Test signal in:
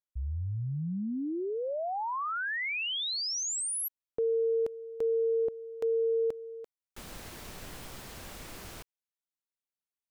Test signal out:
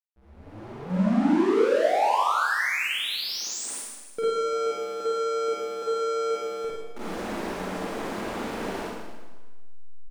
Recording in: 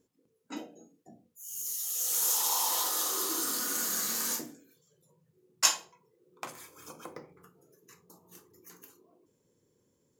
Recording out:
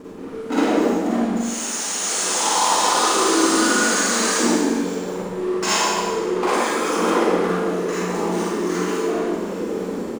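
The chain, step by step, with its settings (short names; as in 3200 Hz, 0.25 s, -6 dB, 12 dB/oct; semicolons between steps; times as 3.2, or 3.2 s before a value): power-law curve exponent 0.35; AGC gain up to 5 dB; on a send: frequency-shifting echo 0.155 s, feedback 51%, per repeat +130 Hz, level -23.5 dB; on the sum: FFT band-pass 180–10000 Hz; in parallel at -3.5 dB: soft clip -14 dBFS; on the sum: high shelf 2100 Hz -10.5 dB; backlash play -26.5 dBFS; Schroeder reverb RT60 1.3 s, DRR -8 dB; gain -9 dB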